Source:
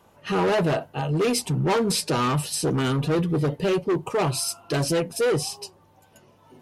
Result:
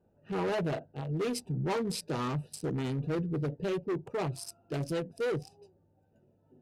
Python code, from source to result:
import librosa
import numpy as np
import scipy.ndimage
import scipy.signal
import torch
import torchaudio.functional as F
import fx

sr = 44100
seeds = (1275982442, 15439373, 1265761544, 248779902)

y = fx.wiener(x, sr, points=41)
y = y * 10.0 ** (-8.5 / 20.0)